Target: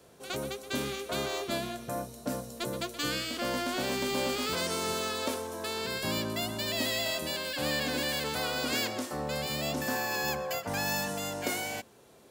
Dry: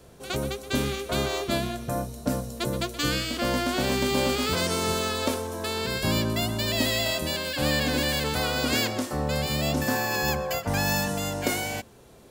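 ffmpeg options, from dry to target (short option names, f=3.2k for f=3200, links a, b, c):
-filter_complex "[0:a]highpass=f=240:p=1,asplit=2[a][b];[b]asoftclip=type=hard:threshold=-28.5dB,volume=-8dB[c];[a][c]amix=inputs=2:normalize=0,volume=-6.5dB"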